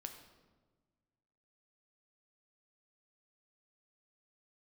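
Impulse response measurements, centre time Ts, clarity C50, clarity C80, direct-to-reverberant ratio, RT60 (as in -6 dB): 22 ms, 8.0 dB, 9.5 dB, 5.0 dB, 1.4 s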